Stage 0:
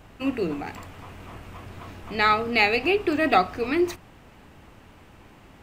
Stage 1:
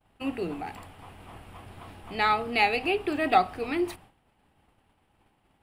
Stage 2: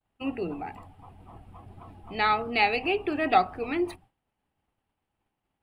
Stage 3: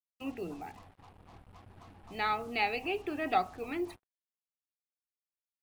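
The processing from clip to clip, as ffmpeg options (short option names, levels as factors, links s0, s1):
-af "agate=range=0.0224:threshold=0.01:ratio=3:detection=peak,equalizer=f=800:t=o:w=0.33:g=7,equalizer=f=3150:t=o:w=0.33:g=4,equalizer=f=6300:t=o:w=0.33:g=-8,equalizer=f=10000:t=o:w=0.33:g=10,volume=0.531"
-af "afftdn=nr=14:nf=-44"
-af "acrusher=bits=7:mix=0:aa=0.5,volume=0.422"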